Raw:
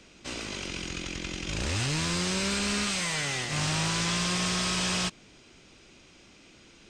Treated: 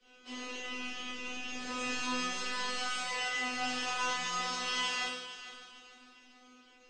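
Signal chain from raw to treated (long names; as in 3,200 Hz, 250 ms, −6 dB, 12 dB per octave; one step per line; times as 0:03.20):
three-way crossover with the lows and the highs turned down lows −16 dB, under 280 Hz, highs −15 dB, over 6,200 Hz
tuned comb filter 250 Hz, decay 0.55 s, harmonics all, mix 100%
on a send: echo machine with several playback heads 151 ms, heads first and third, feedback 51%, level −14.5 dB
on the sum: rectangular room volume 49 cubic metres, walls mixed, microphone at 1.5 metres
level +4.5 dB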